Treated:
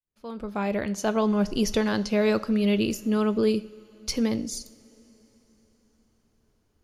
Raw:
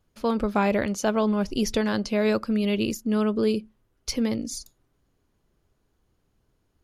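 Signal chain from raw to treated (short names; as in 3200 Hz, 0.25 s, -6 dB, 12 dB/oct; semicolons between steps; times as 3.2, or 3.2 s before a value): opening faded in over 1.33 s; two-slope reverb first 0.49 s, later 4.5 s, from -18 dB, DRR 13 dB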